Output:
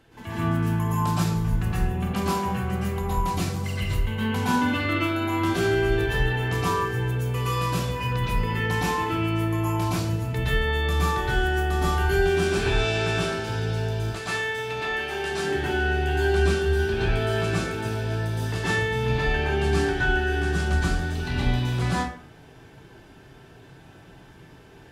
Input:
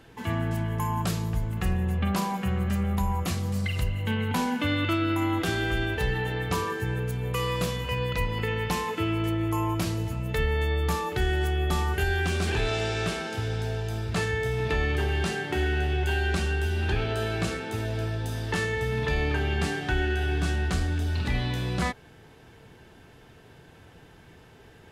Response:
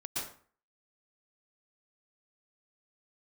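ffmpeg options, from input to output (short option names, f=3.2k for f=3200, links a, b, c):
-filter_complex "[0:a]asettb=1/sr,asplit=3[a][b][c];[a]atrim=end=13.994[d];[b]atrim=start=13.99:end=15.32,asetpts=PTS-STARTPTS,afade=t=in:d=0.004:c=qsin,afade=t=out:st=1.326:d=0.004:c=qsin,highpass=f=620:p=1[e];[c]atrim=start=15.316[f];[d][e]acrossfade=d=0.004:c1=hsin:c2=qsin[g];[g][f]acrossfade=d=0.004:c1=qsin:c2=hsin[h];[1:a]atrim=start_sample=2205[i];[h][i]afir=irnorm=-1:irlink=0"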